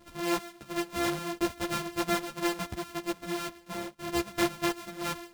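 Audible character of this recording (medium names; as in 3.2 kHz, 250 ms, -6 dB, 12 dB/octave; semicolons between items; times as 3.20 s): a buzz of ramps at a fixed pitch in blocks of 128 samples; tremolo triangle 3 Hz, depth 35%; a shimmering, thickened sound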